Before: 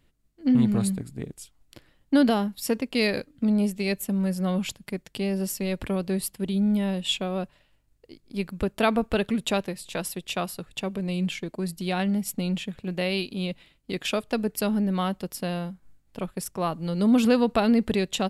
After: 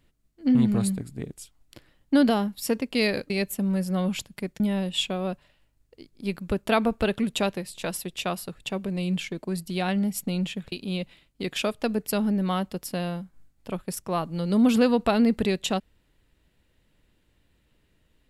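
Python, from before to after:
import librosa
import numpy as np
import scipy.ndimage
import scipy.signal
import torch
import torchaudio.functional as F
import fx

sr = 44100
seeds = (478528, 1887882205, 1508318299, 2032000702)

y = fx.edit(x, sr, fx.cut(start_s=3.3, length_s=0.5),
    fx.cut(start_s=5.1, length_s=1.61),
    fx.cut(start_s=12.83, length_s=0.38), tone=tone)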